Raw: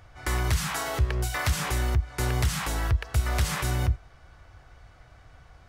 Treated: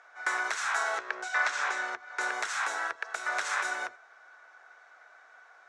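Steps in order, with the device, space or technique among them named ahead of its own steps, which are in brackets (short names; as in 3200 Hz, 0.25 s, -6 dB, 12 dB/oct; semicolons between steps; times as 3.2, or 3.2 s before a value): 0.98–2.21 LPF 6600 Hz 12 dB/oct; phone speaker on a table (speaker cabinet 500–7300 Hz, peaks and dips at 530 Hz -5 dB, 1500 Hz +9 dB, 3000 Hz -8 dB, 4700 Hz -8 dB)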